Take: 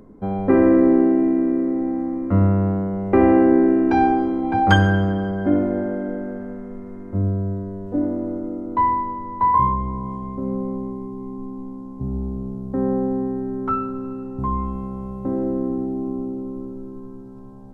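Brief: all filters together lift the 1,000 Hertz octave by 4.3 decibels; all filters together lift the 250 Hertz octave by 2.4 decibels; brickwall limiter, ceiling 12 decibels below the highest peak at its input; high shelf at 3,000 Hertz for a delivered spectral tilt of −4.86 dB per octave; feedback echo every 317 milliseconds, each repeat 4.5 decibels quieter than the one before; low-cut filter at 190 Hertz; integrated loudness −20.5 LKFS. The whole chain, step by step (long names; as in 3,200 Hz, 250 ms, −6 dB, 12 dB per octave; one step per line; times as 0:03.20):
high-pass filter 190 Hz
parametric band 250 Hz +4 dB
parametric band 1,000 Hz +4 dB
high-shelf EQ 3,000 Hz +7 dB
brickwall limiter −12 dBFS
repeating echo 317 ms, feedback 60%, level −4.5 dB
level −1 dB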